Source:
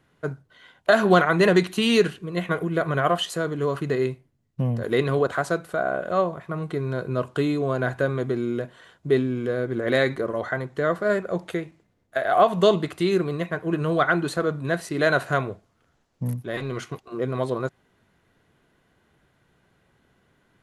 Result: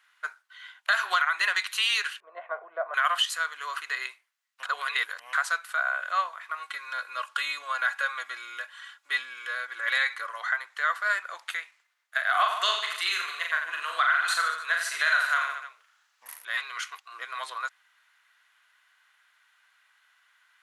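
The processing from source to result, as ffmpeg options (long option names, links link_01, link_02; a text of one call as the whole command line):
ffmpeg -i in.wav -filter_complex "[0:a]asettb=1/sr,asplit=3[link_01][link_02][link_03];[link_01]atrim=end=2.204[link_04];[link_02]atrim=start=2.2:end=2.94,asetpts=PTS-STARTPTS,afade=type=in:duration=0.004:curve=qsin,afade=type=out:start_time=0.736:duration=0.004:curve=qsin,lowpass=frequency=640:width_type=q:width=5.4[link_05];[link_03]atrim=start=2.936[link_06];[link_04][link_05]acrossfade=duration=0.004:curve1=hsin:curve2=qsin[link_07];[link_07][link_06]acrossfade=duration=0.004:curve1=qsin:curve2=hsin,asettb=1/sr,asplit=3[link_08][link_09][link_10];[link_08]atrim=end=6.594[link_11];[link_09]atrim=start=6.59:end=10.29,asetpts=PTS-STARTPTS,afade=type=in:duration=0.004:curve=qsin,afade=type=out:start_time=3.696:duration=0.004:curve=qsin,aecho=1:1:3.6:0.6,atrim=end_sample=163170[link_12];[link_10]atrim=start=10.286[link_13];[link_11][link_12]acrossfade=duration=0.004:curve1=hsin:curve2=qsin[link_14];[link_14][link_13]acrossfade=duration=0.004:curve1=qsin:curve2=hsin,asettb=1/sr,asplit=3[link_15][link_16][link_17];[link_15]atrim=end=12.304[link_18];[link_16]atrim=start=12.3:end=16.45,asetpts=PTS-STARTPTS,afade=type=in:duration=0.004:curve=qsin,afade=type=out:start_time=4.146:duration=0.004:curve=qsin,aecho=1:1:40|88|145.6|214.7|297.7:0.631|0.398|0.251|0.158|0.1,atrim=end_sample=183015[link_19];[link_17]atrim=start=16.446[link_20];[link_18][link_19]acrossfade=duration=0.004:curve1=hsin:curve2=qsin[link_21];[link_21][link_20]acrossfade=duration=0.004:curve1=qsin:curve2=hsin,asplit=3[link_22][link_23][link_24];[link_22]atrim=end=4.632[link_25];[link_23]atrim=start=4.628:end=5.332,asetpts=PTS-STARTPTS,areverse[link_26];[link_24]atrim=start=5.328[link_27];[link_25][link_26]acrossfade=duration=0.004:curve1=hsin:curve2=hsin[link_28];[link_28][link_27]acrossfade=duration=0.004:curve1=hsin:curve2=hsin,highpass=frequency=1200:width=0.5412,highpass=frequency=1200:width=1.3066,equalizer=frequency=1700:width=0.38:gain=3,alimiter=limit=-16.5dB:level=0:latency=1:release=196,volume=3dB" out.wav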